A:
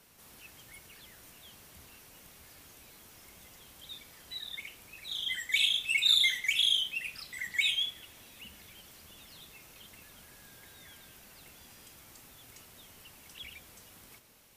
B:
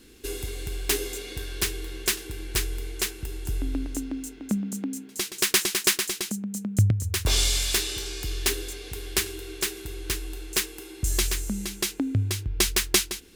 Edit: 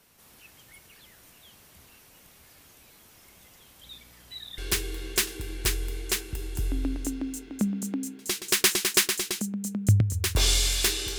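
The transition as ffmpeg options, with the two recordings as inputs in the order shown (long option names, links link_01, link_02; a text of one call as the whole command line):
ffmpeg -i cue0.wav -i cue1.wav -filter_complex "[0:a]asettb=1/sr,asplit=3[link_01][link_02][link_03];[link_01]atrim=end=3.824[link_04];[link_02]atrim=start=3.82:end=4.58,asetpts=PTS-STARTPTS,afade=type=in:duration=0.004:curve=qsin,afade=type=out:start_time=0.756:duration=0.004:curve=qsin,aeval=exprs='val(0)+0.00126*(sin(2*PI*60*n/s)+sin(2*PI*2*60*n/s)/2+sin(2*PI*3*60*n/s)/3+sin(2*PI*4*60*n/s)/4+sin(2*PI*5*60*n/s)/5)':channel_layout=same[link_05];[link_03]atrim=start=4.576[link_06];[link_04][link_05]acrossfade=duration=0.004:curve1=hsin:curve2=qsin[link_07];[link_07][link_06]acrossfade=duration=0.004:curve1=qsin:curve2=hsin,apad=whole_dur=11.18,atrim=end=11.18,atrim=end=4.582[link_08];[1:a]atrim=start=1.478:end=8.08[link_09];[link_08][link_09]acrossfade=duration=0.004:curve1=hsin:curve2=hsin" out.wav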